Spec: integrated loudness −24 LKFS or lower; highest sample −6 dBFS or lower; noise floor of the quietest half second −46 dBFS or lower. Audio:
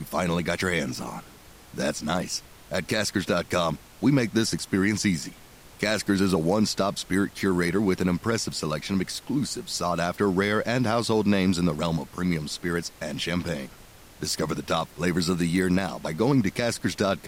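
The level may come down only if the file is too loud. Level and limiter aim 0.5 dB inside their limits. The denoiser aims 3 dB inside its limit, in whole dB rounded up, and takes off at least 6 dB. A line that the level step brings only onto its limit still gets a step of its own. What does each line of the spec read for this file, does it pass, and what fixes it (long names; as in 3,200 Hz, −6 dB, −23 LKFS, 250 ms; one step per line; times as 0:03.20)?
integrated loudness −26.0 LKFS: in spec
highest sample −9.5 dBFS: in spec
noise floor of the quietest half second −49 dBFS: in spec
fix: no processing needed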